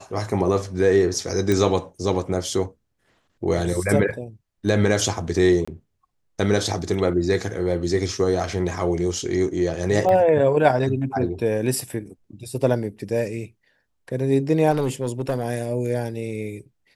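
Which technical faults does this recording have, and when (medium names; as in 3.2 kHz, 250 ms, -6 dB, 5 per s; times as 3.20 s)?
1.52 s: pop -9 dBFS
5.65–5.67 s: dropout 25 ms
10.09 s: dropout 2 ms
14.71–15.44 s: clipped -17.5 dBFS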